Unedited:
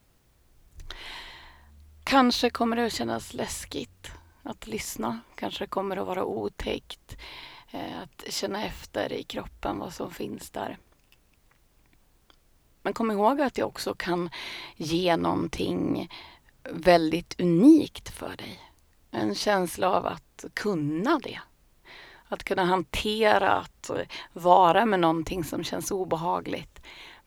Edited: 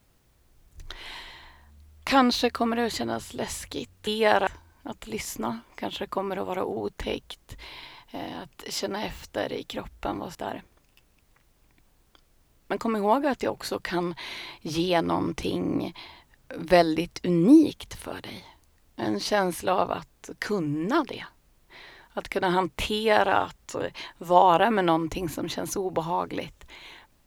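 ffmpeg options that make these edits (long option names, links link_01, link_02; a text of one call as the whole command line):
ffmpeg -i in.wav -filter_complex "[0:a]asplit=4[link_01][link_02][link_03][link_04];[link_01]atrim=end=4.072[link_05];[link_02]atrim=start=23.068:end=23.472[link_06];[link_03]atrim=start=4.068:end=9.952[link_07];[link_04]atrim=start=10.498[link_08];[link_05][link_06]acrossfade=duration=0.004:curve1=hsin:curve2=hsin[link_09];[link_09][link_07]acrossfade=duration=0.004:curve1=hsin:curve2=hsin[link_10];[link_10][link_08]acrossfade=duration=0.004:curve1=hsin:curve2=hsin" out.wav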